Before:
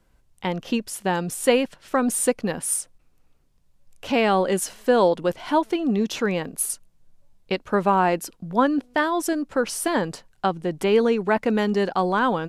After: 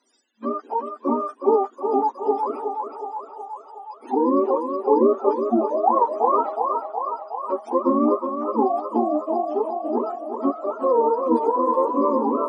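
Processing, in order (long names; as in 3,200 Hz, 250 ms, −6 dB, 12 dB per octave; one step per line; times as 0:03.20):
frequency axis turned over on the octave scale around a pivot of 460 Hz
0:05.77–0:06.63: thirty-one-band graphic EQ 800 Hz +11 dB, 1,250 Hz +9 dB, 4,000 Hz +7 dB
brick-wall band-pass 220–10,000 Hz
on a send: feedback echo with a band-pass in the loop 367 ms, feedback 71%, band-pass 880 Hz, level −4 dB
on the sum: level +2.5 dB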